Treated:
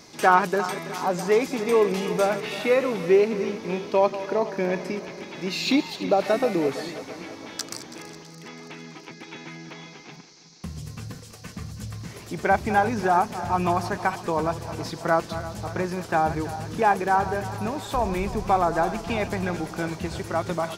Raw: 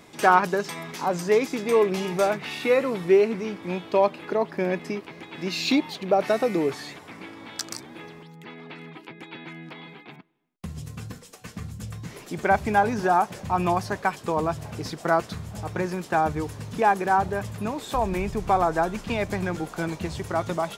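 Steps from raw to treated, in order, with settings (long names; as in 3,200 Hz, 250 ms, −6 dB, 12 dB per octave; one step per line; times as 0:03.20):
feedback delay that plays each chunk backwards 164 ms, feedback 71%, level −13 dB
noise in a band 4,000–6,400 Hz −54 dBFS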